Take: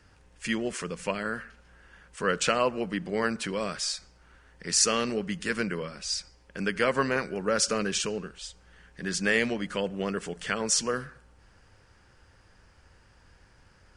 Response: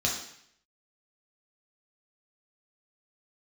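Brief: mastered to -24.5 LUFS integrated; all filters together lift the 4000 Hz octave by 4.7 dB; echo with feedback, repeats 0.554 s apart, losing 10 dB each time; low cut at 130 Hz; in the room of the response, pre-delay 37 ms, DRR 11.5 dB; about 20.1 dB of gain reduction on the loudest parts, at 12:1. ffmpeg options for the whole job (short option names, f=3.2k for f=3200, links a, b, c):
-filter_complex "[0:a]highpass=130,equalizer=f=4k:t=o:g=6.5,acompressor=threshold=-37dB:ratio=12,aecho=1:1:554|1108|1662|2216:0.316|0.101|0.0324|0.0104,asplit=2[a][b];[1:a]atrim=start_sample=2205,adelay=37[c];[b][c]afir=irnorm=-1:irlink=0,volume=-20dB[d];[a][d]amix=inputs=2:normalize=0,volume=16.5dB"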